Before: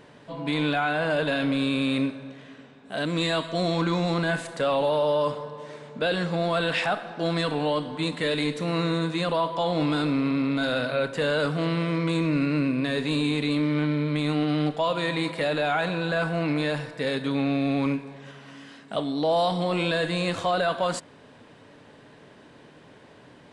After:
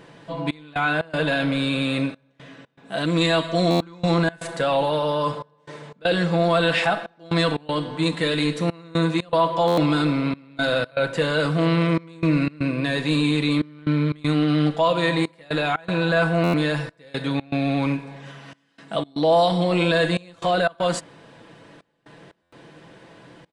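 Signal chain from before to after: comb 6 ms, depth 48%; step gate "xxxx..xx.xxxx" 119 bpm -24 dB; stuck buffer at 3.7/9.67/16.43/22.42, samples 512, times 8; gain +3 dB

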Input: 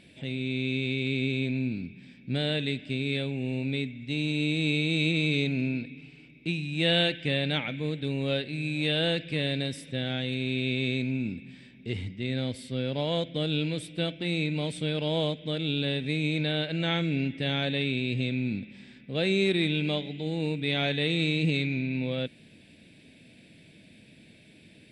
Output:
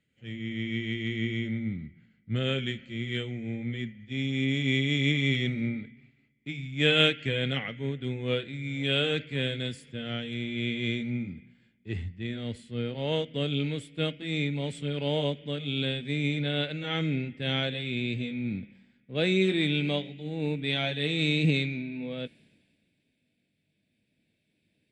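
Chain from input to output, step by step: gliding pitch shift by -2.5 st ending unshifted; three-band expander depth 70%

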